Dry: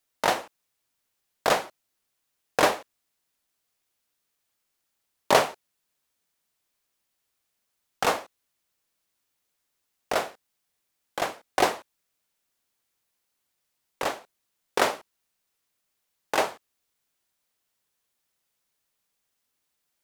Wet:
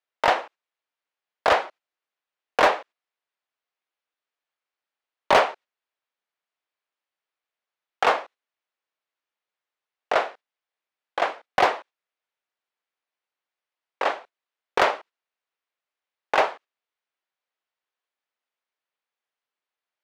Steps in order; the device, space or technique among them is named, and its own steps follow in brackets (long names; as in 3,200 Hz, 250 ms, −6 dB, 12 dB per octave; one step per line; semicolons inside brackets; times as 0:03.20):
walkie-talkie (band-pass filter 470–2,900 Hz; hard clipping −16.5 dBFS, distortion −13 dB; noise gate −49 dBFS, range −10 dB)
level +6 dB